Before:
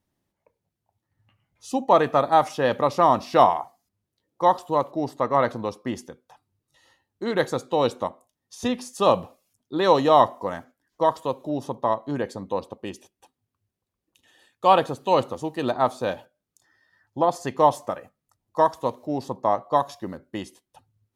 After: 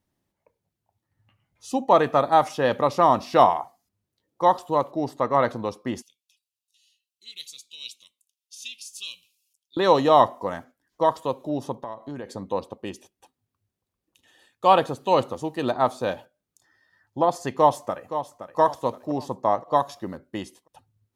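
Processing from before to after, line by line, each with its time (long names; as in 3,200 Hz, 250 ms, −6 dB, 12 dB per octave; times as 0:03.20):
0:06.02–0:09.77: elliptic high-pass filter 2,600 Hz
0:11.74–0:12.33: downward compressor 4 to 1, threshold −32 dBFS
0:17.56–0:18.59: delay throw 520 ms, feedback 40%, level −10.5 dB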